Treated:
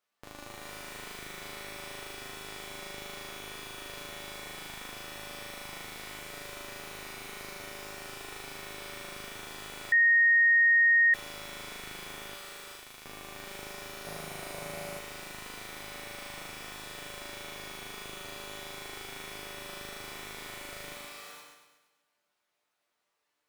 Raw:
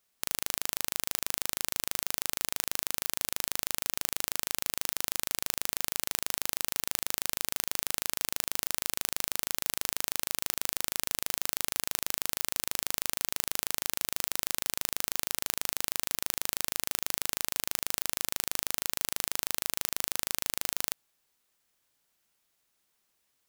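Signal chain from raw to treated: regenerating reverse delay 0.117 s, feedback 50%, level -4.5 dB; 12.35–13.04 passive tone stack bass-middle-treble 5-5-5; resonator bank G2 minor, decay 0.22 s; non-linear reverb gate 0.5 s rising, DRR 4.5 dB; overdrive pedal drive 22 dB, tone 1200 Hz, clips at -13.5 dBFS; 9.92–11.14 bleep 1860 Hz -16.5 dBFS; 14.05–14.99 fifteen-band EQ 160 Hz +11 dB, 630 Hz +10 dB, 10000 Hz +4 dB; gain -2 dB

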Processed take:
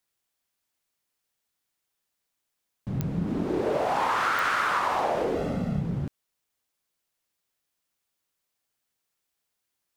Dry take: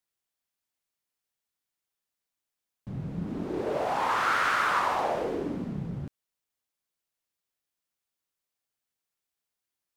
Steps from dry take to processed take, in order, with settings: 5.35–5.81 comb 1.5 ms, depth 79%; compressor, threshold -28 dBFS, peak gain reduction 7 dB; pops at 3.01/4.39, -21 dBFS; gain +6 dB

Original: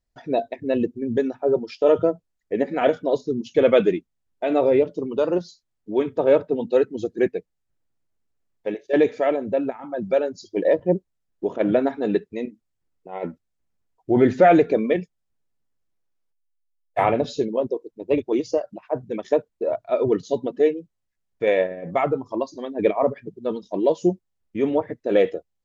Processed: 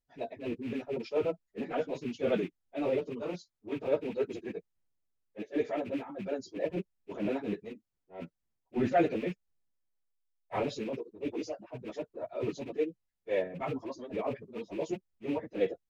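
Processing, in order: rattling part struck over -31 dBFS, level -26 dBFS; transient shaper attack -11 dB, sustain +3 dB; plain phase-vocoder stretch 0.62×; gain -6.5 dB

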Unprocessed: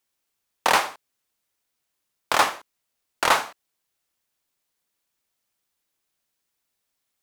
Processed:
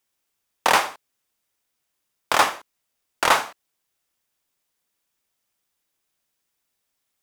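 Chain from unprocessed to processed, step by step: notch 4200 Hz, Q 24; gain +1.5 dB

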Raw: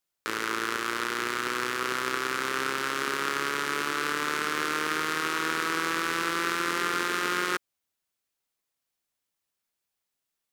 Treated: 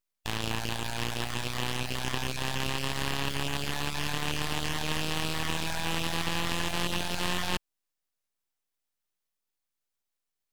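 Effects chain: random spectral dropouts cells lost 21%; full-wave rectifier

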